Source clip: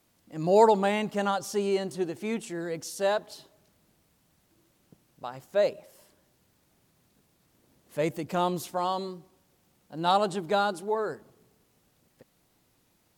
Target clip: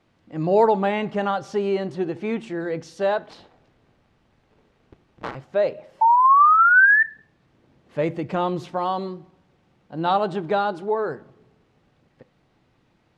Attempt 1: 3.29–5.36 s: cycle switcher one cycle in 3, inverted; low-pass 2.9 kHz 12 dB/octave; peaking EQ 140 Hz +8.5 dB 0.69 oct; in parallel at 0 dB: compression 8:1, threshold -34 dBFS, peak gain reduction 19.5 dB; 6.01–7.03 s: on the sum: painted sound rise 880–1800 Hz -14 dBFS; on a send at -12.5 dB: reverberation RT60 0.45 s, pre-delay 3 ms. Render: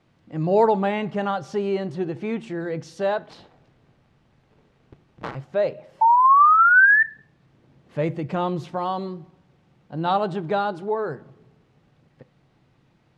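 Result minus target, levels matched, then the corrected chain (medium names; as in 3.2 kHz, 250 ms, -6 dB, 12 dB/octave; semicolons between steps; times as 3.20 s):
compression: peak gain reduction +6 dB; 125 Hz band +2.5 dB
3.29–5.36 s: cycle switcher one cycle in 3, inverted; low-pass 2.9 kHz 12 dB/octave; peaking EQ 140 Hz +2 dB 0.69 oct; in parallel at 0 dB: compression 8:1, threshold -27.5 dBFS, peak gain reduction 13.5 dB; 6.01–7.03 s: on the sum: painted sound rise 880–1800 Hz -14 dBFS; on a send at -12.5 dB: reverberation RT60 0.45 s, pre-delay 3 ms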